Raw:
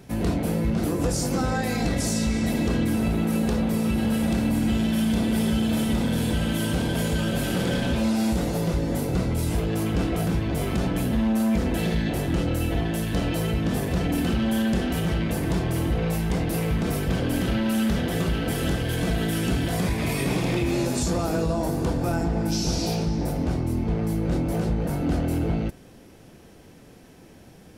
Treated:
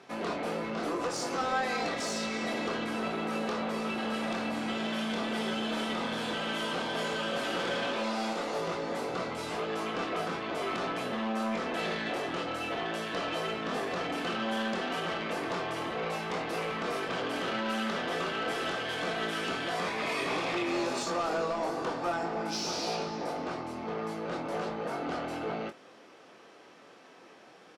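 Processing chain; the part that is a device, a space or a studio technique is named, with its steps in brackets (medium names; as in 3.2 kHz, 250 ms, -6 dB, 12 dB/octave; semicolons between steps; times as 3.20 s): 7.87–8.59 s: high-pass 190 Hz; intercom (band-pass 480–4700 Hz; peaking EQ 1.2 kHz +7.5 dB 0.34 oct; saturation -25 dBFS, distortion -18 dB; doubling 23 ms -8 dB)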